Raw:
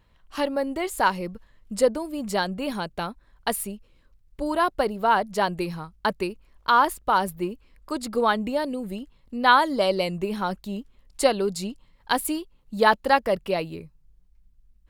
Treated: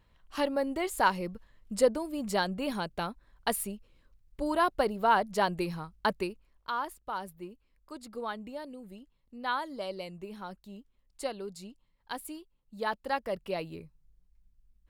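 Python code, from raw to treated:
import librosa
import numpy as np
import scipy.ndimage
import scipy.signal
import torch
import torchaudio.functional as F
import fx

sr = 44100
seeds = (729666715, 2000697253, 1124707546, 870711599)

y = fx.gain(x, sr, db=fx.line((6.16, -4.0), (6.75, -15.0), (12.77, -15.0), (13.79, -6.5)))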